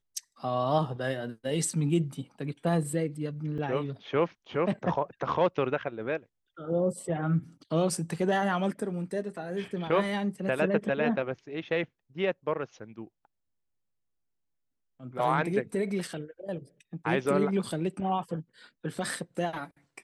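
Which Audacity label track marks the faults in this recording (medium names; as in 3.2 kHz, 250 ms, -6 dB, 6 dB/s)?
3.580000	3.590000	dropout 6 ms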